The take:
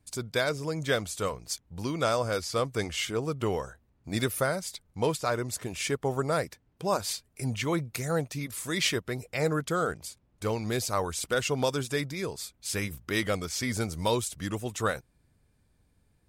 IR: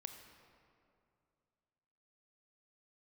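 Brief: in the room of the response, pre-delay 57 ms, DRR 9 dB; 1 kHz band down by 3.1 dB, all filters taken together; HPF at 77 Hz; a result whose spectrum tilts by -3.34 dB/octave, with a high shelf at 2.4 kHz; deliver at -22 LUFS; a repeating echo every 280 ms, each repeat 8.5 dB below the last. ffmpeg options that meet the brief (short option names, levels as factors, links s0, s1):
-filter_complex "[0:a]highpass=77,equalizer=f=1000:t=o:g=-6.5,highshelf=f=2400:g=9,aecho=1:1:280|560|840|1120:0.376|0.143|0.0543|0.0206,asplit=2[s0][s1];[1:a]atrim=start_sample=2205,adelay=57[s2];[s1][s2]afir=irnorm=-1:irlink=0,volume=0.562[s3];[s0][s3]amix=inputs=2:normalize=0,volume=1.78"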